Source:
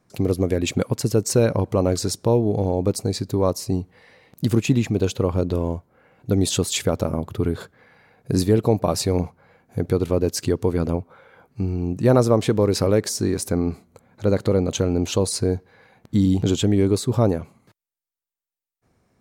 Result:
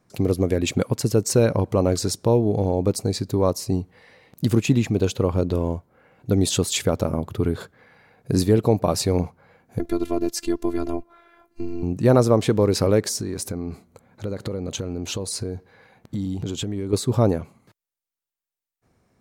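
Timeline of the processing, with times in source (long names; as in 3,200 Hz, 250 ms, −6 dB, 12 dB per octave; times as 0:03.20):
0:09.79–0:11.83: phases set to zero 341 Hz
0:13.20–0:16.93: downward compressor, threshold −24 dBFS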